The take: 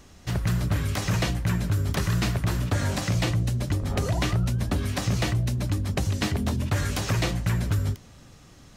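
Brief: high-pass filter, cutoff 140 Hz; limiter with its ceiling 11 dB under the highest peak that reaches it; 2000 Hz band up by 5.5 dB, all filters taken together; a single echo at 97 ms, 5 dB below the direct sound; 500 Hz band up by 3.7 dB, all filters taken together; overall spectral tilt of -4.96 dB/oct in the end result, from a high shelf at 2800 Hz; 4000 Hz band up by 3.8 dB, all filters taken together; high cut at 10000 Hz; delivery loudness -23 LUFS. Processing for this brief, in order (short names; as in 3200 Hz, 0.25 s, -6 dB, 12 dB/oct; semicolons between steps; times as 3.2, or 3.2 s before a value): HPF 140 Hz; LPF 10000 Hz; bell 500 Hz +4.5 dB; bell 2000 Hz +6.5 dB; high shelf 2800 Hz -3.5 dB; bell 4000 Hz +5.5 dB; limiter -19 dBFS; echo 97 ms -5 dB; gain +5.5 dB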